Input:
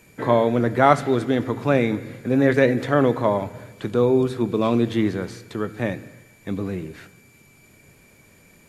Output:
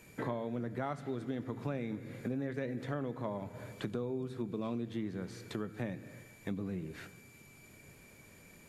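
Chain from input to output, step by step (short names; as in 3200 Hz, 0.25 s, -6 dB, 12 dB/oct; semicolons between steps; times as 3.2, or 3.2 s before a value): dynamic EQ 170 Hz, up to +7 dB, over -34 dBFS, Q 1.1; compressor 6:1, threshold -31 dBFS, peak gain reduction 21 dB; gain -4.5 dB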